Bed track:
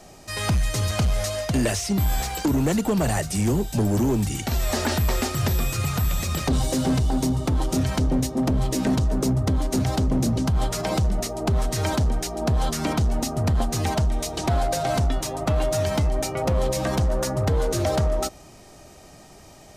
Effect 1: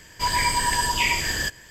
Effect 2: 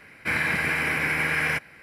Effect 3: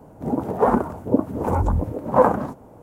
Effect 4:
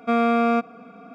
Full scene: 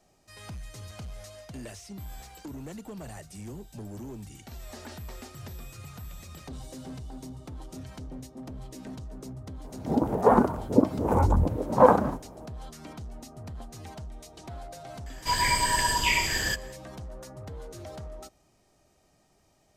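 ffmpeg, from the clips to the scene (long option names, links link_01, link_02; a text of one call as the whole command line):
ffmpeg -i bed.wav -i cue0.wav -i cue1.wav -i cue2.wav -filter_complex "[0:a]volume=-19dB[link_01];[3:a]atrim=end=2.82,asetpts=PTS-STARTPTS,volume=-1.5dB,afade=type=in:duration=0.004:curve=hsin,afade=type=out:start_time=2.816:duration=0.004:curve=hsin,adelay=9640[link_02];[1:a]atrim=end=1.7,asetpts=PTS-STARTPTS,volume=-2.5dB,afade=type=in:duration=0.004:curve=hsin,afade=type=out:start_time=1.696:duration=0.004:curve=hsin,adelay=15060[link_03];[link_01][link_02][link_03]amix=inputs=3:normalize=0" out.wav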